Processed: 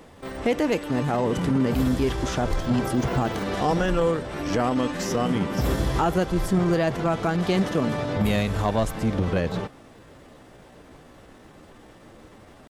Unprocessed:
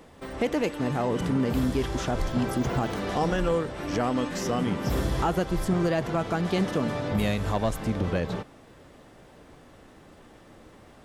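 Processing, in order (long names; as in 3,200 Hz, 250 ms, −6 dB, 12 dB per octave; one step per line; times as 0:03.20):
tempo change 0.87×
level +3 dB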